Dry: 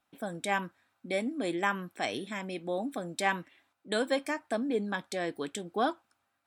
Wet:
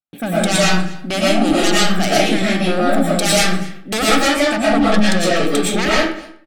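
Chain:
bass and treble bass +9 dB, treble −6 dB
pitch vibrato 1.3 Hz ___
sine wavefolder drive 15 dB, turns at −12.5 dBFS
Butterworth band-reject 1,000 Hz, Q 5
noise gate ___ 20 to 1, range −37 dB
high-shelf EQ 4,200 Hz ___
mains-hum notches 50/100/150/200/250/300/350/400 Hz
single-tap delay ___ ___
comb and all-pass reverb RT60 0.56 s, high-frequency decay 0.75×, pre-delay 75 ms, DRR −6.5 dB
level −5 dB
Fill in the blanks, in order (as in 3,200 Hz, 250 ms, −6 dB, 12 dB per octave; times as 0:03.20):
53 cents, −47 dBFS, +9.5 dB, 246 ms, −22 dB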